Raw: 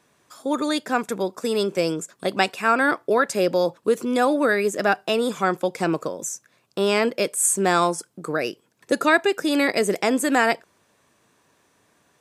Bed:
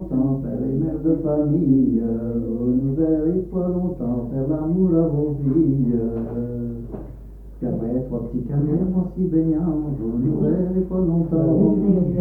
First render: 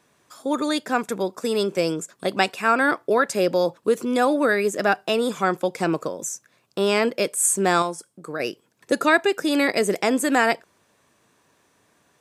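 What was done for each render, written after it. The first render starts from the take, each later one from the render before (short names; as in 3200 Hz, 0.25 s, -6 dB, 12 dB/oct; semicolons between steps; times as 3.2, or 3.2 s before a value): 7.82–8.4 resonator 550 Hz, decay 0.33 s, mix 50%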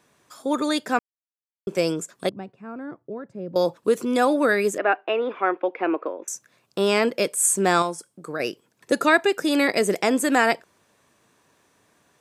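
0.99–1.67 mute; 2.29–3.56 band-pass 110 Hz, Q 1.3; 4.78–6.28 elliptic band-pass 300–2600 Hz, stop band 50 dB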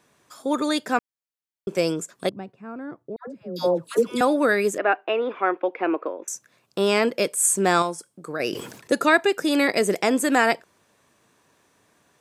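3.16–4.21 dispersion lows, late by 0.118 s, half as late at 860 Hz; 8.27–8.92 sustainer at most 67 dB/s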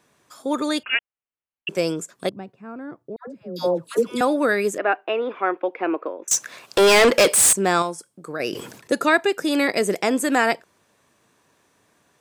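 0.83–1.69 inverted band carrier 3100 Hz; 6.31–7.53 overdrive pedal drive 28 dB, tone 7900 Hz, clips at -6.5 dBFS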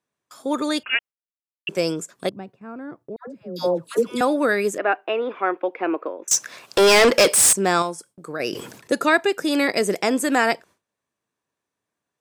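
gate with hold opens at -41 dBFS; dynamic EQ 5300 Hz, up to +5 dB, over -43 dBFS, Q 5.1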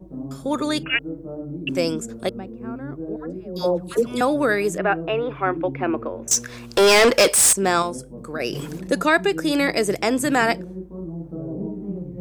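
add bed -13 dB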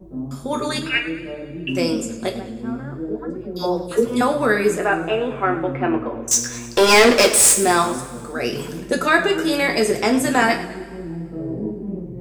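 two-slope reverb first 0.27 s, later 2.1 s, from -21 dB, DRR 1.5 dB; warbling echo 0.106 s, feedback 48%, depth 133 cents, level -15 dB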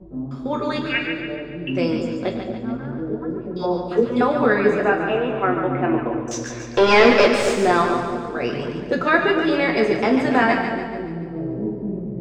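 air absorption 230 m; split-band echo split 710 Hz, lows 0.226 s, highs 0.143 s, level -6.5 dB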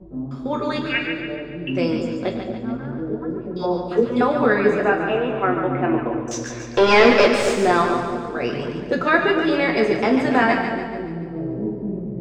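nothing audible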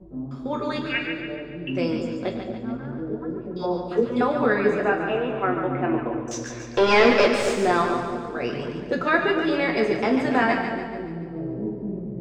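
gain -3.5 dB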